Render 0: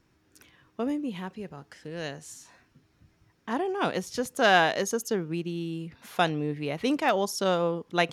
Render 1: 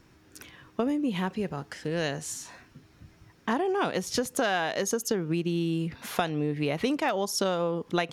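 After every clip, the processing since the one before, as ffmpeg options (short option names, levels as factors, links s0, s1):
-af "acompressor=threshold=0.0251:ratio=12,volume=2.66"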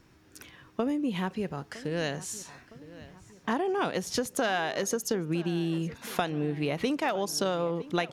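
-filter_complex "[0:a]asplit=2[s0][s1];[s1]adelay=961,lowpass=f=3900:p=1,volume=0.126,asplit=2[s2][s3];[s3]adelay=961,lowpass=f=3900:p=1,volume=0.52,asplit=2[s4][s5];[s5]adelay=961,lowpass=f=3900:p=1,volume=0.52,asplit=2[s6][s7];[s7]adelay=961,lowpass=f=3900:p=1,volume=0.52[s8];[s0][s2][s4][s6][s8]amix=inputs=5:normalize=0,volume=0.841"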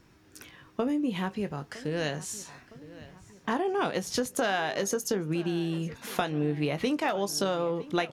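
-filter_complex "[0:a]asplit=2[s0][s1];[s1]adelay=20,volume=0.282[s2];[s0][s2]amix=inputs=2:normalize=0"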